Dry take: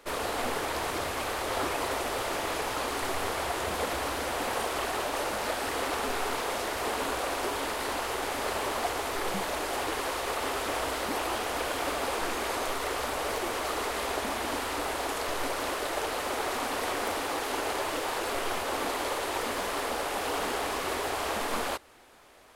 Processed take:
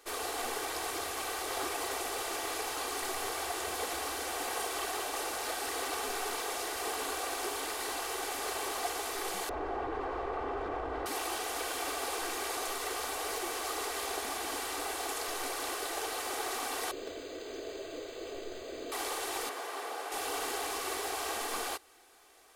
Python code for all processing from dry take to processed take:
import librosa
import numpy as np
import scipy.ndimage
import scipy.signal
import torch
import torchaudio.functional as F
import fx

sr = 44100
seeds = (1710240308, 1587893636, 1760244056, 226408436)

y = fx.chain(x, sr, fx.lowpass(hz=1200.0, slope=12),
    fx.low_shelf(hz=180.0, db=11.0),
    fx.env_flatten(amount_pct=100), at=(9.49, 11.06))
y = fx.chain(y, sr, fx.brickwall_bandstop(low_hz=690.0, high_hz=6000.0),
    fx.resample_linear(factor=4), at=(16.91, 18.92))
y = fx.chain(y, sr, fx.highpass(hz=380.0, slope=12),
    fx.high_shelf(hz=2900.0, db=-10.0), at=(19.49, 20.12))
y = fx.bass_treble(y, sr, bass_db=-8, treble_db=7)
y = y + 0.49 * np.pad(y, (int(2.6 * sr / 1000.0), 0))[:len(y)]
y = y * librosa.db_to_amplitude(-6.5)